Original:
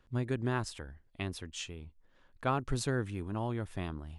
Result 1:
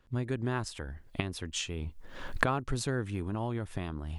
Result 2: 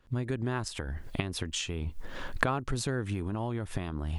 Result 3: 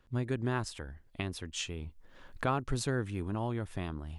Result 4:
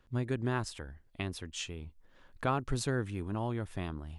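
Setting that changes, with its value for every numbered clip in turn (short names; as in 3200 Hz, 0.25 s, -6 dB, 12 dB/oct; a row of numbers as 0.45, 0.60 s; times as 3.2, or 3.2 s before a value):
recorder AGC, rising by: 33, 90, 13, 5.3 dB/s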